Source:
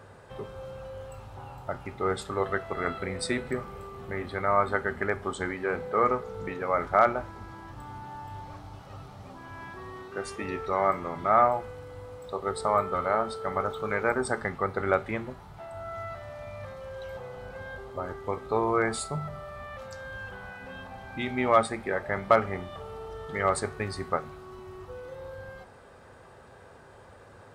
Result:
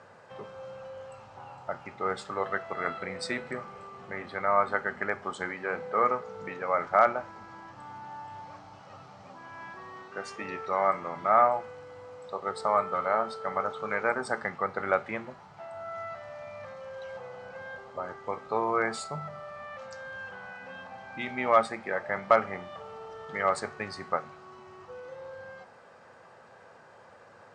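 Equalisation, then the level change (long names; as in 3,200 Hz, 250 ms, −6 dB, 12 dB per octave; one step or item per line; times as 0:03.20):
loudspeaker in its box 200–7,100 Hz, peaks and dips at 270 Hz −6 dB, 390 Hz −7 dB, 3,600 Hz −5 dB
0.0 dB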